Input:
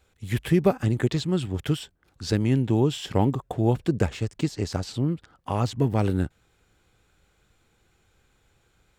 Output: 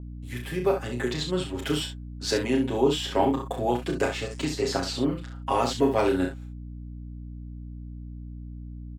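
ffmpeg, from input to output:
ffmpeg -i in.wav -filter_complex "[0:a]highpass=frequency=200:poles=1,agate=range=-46dB:threshold=-52dB:ratio=16:detection=peak,aecho=1:1:7.4:0.89,acrossover=split=260[link_01][link_02];[link_01]alimiter=level_in=1.5dB:limit=-24dB:level=0:latency=1,volume=-1.5dB[link_03];[link_02]dynaudnorm=framelen=450:gausssize=3:maxgain=14dB[link_04];[link_03][link_04]amix=inputs=2:normalize=0,aecho=1:1:33|66:0.531|0.398,aeval=exprs='val(0)+0.0398*(sin(2*PI*60*n/s)+sin(2*PI*2*60*n/s)/2+sin(2*PI*3*60*n/s)/3+sin(2*PI*4*60*n/s)/4+sin(2*PI*5*60*n/s)/5)':channel_layout=same,adynamicequalizer=threshold=0.0178:dfrequency=5500:dqfactor=0.7:tfrequency=5500:tqfactor=0.7:attack=5:release=100:ratio=0.375:range=2.5:mode=cutabove:tftype=highshelf,volume=-9dB" out.wav

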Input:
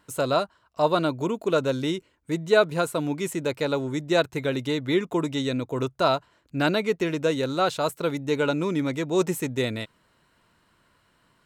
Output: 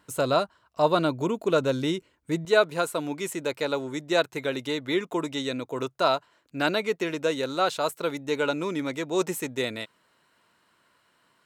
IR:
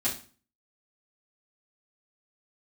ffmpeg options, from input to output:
-af "asetnsamples=nb_out_samples=441:pad=0,asendcmd='2.45 highpass f 370',highpass=frequency=49:poles=1"

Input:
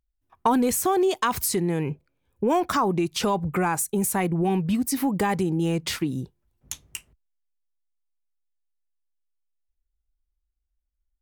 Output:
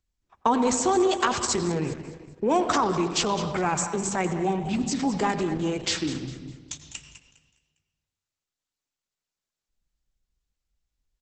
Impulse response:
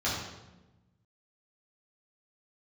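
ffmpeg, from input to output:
-filter_complex "[0:a]asplit=3[link_01][link_02][link_03];[link_01]afade=type=out:start_time=5.9:duration=0.02[link_04];[link_02]highpass=frequency=50:width=0.5412,highpass=frequency=50:width=1.3066,afade=type=in:start_time=5.9:duration=0.02,afade=type=out:start_time=6.82:duration=0.02[link_05];[link_03]afade=type=in:start_time=6.82:duration=0.02[link_06];[link_04][link_05][link_06]amix=inputs=3:normalize=0,highshelf=frequency=4600:gain=5,bandreject=frequency=65.48:width_type=h:width=4,bandreject=frequency=130.96:width_type=h:width=4,bandreject=frequency=196.44:width_type=h:width=4,bandreject=frequency=261.92:width_type=h:width=4,bandreject=frequency=327.4:width_type=h:width=4,bandreject=frequency=392.88:width_type=h:width=4,bandreject=frequency=458.36:width_type=h:width=4,bandreject=frequency=523.84:width_type=h:width=4,bandreject=frequency=589.32:width_type=h:width=4,acrossover=split=250[link_07][link_08];[link_07]alimiter=level_in=6dB:limit=-24dB:level=0:latency=1:release=13,volume=-6dB[link_09];[link_09][link_08]amix=inputs=2:normalize=0,aecho=1:1:203|406|609|812:0.224|0.0851|0.0323|0.0123,asplit=2[link_10][link_11];[1:a]atrim=start_sample=2205,asetrate=37044,aresample=44100,adelay=84[link_12];[link_11][link_12]afir=irnorm=-1:irlink=0,volume=-21dB[link_13];[link_10][link_13]amix=inputs=2:normalize=0" -ar 48000 -c:a libopus -b:a 10k

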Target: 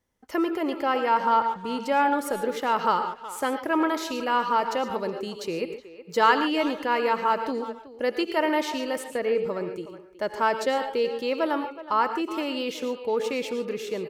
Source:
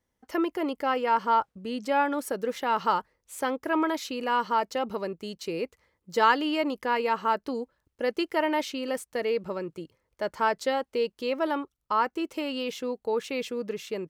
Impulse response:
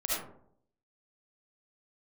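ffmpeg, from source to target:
-filter_complex "[0:a]asettb=1/sr,asplit=3[link_01][link_02][link_03];[link_01]atrim=end=9.164[link_04];[link_02]atrim=start=9.16:end=9.61,asetpts=PTS-STARTPTS,afade=type=in:duration=0.004:curve=qsin,afade=type=out:start_time=0.446:duration=0.004:curve=qsin,acrossover=split=2700[link_05][link_06];[link_06]acompressor=threshold=-51dB:ratio=4:attack=1:release=60[link_07];[link_05][link_07]amix=inputs=2:normalize=0[link_08];[link_03]atrim=start=9.606[link_09];[link_04][link_08]acrossfade=duration=0.004:curve1=hsin:curve2=qsin[link_10];[link_10][link_09]acrossfade=duration=0.004:curve1=qsin:curve2=hsin,asplit=2[link_11][link_12];[link_12]adelay=370,highpass=300,lowpass=3400,asoftclip=type=hard:threshold=-18.5dB,volume=-14dB[link_13];[link_11][link_13]amix=inputs=2:normalize=0,asplit=2[link_14][link_15];[1:a]atrim=start_sample=2205,atrim=end_sample=4410,asetrate=28224,aresample=44100[link_16];[link_15][link_16]afir=irnorm=-1:irlink=0,volume=-14dB[link_17];[link_14][link_17]amix=inputs=2:normalize=0"

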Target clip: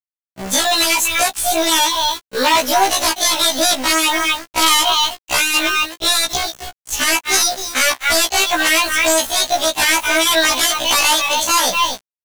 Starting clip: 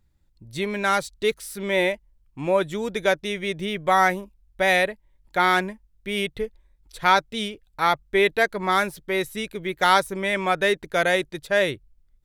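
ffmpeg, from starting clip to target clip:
ffmpeg -i in.wav -filter_complex "[0:a]aeval=exprs='if(lt(val(0),0),0.708*val(0),val(0))':channel_layout=same,agate=range=-15dB:threshold=-54dB:ratio=16:detection=peak,tiltshelf=frequency=970:gain=-4.5,asplit=2[link_01][link_02];[link_02]adelay=250.7,volume=-16dB,highshelf=frequency=4000:gain=-5.64[link_03];[link_01][link_03]amix=inputs=2:normalize=0,acompressor=threshold=-24dB:ratio=3,adynamicequalizer=threshold=0.00282:dfrequency=140:dqfactor=0.79:tfrequency=140:tqfactor=0.79:attack=5:release=100:ratio=0.375:range=2:mode=cutabove:tftype=bell,aresample=16000,aeval=exprs='0.0473*(abs(mod(val(0)/0.0473+3,4)-2)-1)':channel_layout=same,aresample=44100,asetrate=74167,aresample=44100,atempo=0.594604,acrusher=bits=7:mix=0:aa=0.000001,acrossover=split=480|3000[link_04][link_05][link_06];[link_04]acompressor=threshold=-50dB:ratio=3[link_07];[link_07][link_05][link_06]amix=inputs=3:normalize=0,alimiter=level_in=25dB:limit=-1dB:release=50:level=0:latency=1,afftfilt=real='re*1.73*eq(mod(b,3),0)':imag='im*1.73*eq(mod(b,3),0)':win_size=2048:overlap=0.75,volume=-1.5dB" out.wav

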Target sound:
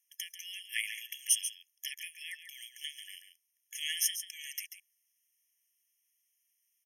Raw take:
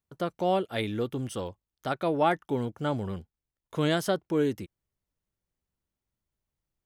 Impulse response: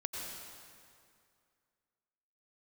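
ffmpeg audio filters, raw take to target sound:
-filter_complex "[0:a]lowshelf=frequency=400:gain=-9.5,acompressor=threshold=-34dB:ratio=10,crystalizer=i=8:c=0,aresample=32000,aresample=44100,asplit=2[link_01][link_02];[link_02]aecho=0:1:139:0.316[link_03];[link_01][link_03]amix=inputs=2:normalize=0,afftfilt=real='re*eq(mod(floor(b*sr/1024/1700),2),1)':imag='im*eq(mod(floor(b*sr/1024/1700),2),1)':win_size=1024:overlap=0.75"

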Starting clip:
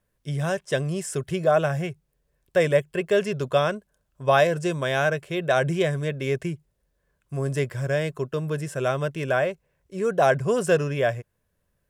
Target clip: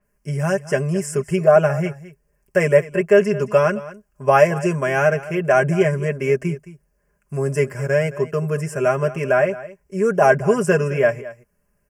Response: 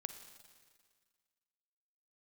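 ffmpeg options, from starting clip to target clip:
-af "asuperstop=centerf=3700:order=4:qfactor=1.7,aecho=1:1:4.9:0.74,aecho=1:1:217:0.141,adynamicequalizer=threshold=0.00708:dfrequency=5300:dqfactor=0.7:tfrequency=5300:tqfactor=0.7:attack=5:release=100:ratio=0.375:range=2.5:mode=cutabove:tftype=highshelf,volume=3.5dB"

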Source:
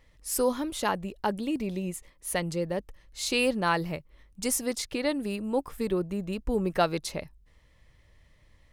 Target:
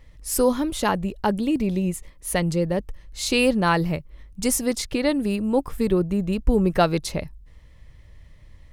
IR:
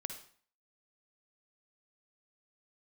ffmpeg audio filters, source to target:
-af "lowshelf=frequency=210:gain=9,volume=4.5dB"

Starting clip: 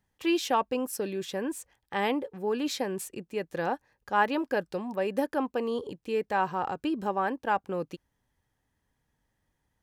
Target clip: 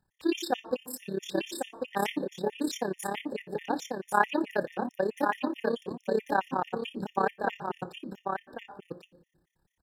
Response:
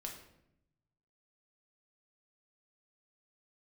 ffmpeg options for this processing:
-filter_complex "[0:a]aecho=1:1:1097:0.596,tremolo=f=34:d=0.788,asplit=2[link_01][link_02];[1:a]atrim=start_sample=2205[link_03];[link_02][link_03]afir=irnorm=-1:irlink=0,volume=-7.5dB[link_04];[link_01][link_04]amix=inputs=2:normalize=0,afftfilt=real='re*gt(sin(2*PI*4.6*pts/sr)*(1-2*mod(floor(b*sr/1024/1800),2)),0)':imag='im*gt(sin(2*PI*4.6*pts/sr)*(1-2*mod(floor(b*sr/1024/1800),2)),0)':win_size=1024:overlap=0.75,volume=2.5dB"

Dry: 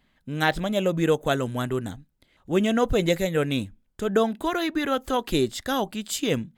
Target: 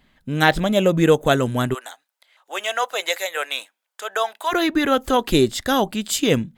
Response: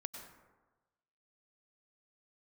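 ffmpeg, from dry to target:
-filter_complex "[0:a]asplit=3[link_01][link_02][link_03];[link_01]afade=type=out:start_time=1.73:duration=0.02[link_04];[link_02]highpass=frequency=690:width=0.5412,highpass=frequency=690:width=1.3066,afade=type=in:start_time=1.73:duration=0.02,afade=type=out:start_time=4.51:duration=0.02[link_05];[link_03]afade=type=in:start_time=4.51:duration=0.02[link_06];[link_04][link_05][link_06]amix=inputs=3:normalize=0,volume=6.5dB"

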